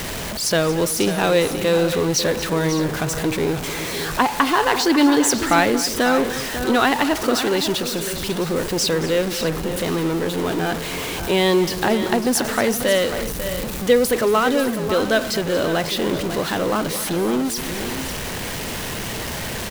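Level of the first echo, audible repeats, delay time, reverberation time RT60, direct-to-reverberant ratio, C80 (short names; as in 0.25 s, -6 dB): -15.0 dB, 3, 0.228 s, none, none, none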